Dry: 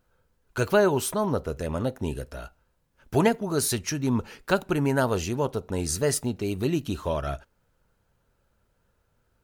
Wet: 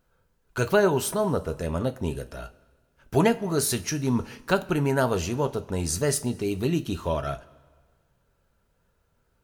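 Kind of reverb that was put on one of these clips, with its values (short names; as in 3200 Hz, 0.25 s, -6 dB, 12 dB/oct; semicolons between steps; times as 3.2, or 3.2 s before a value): two-slope reverb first 0.22 s, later 1.6 s, from -18 dB, DRR 9.5 dB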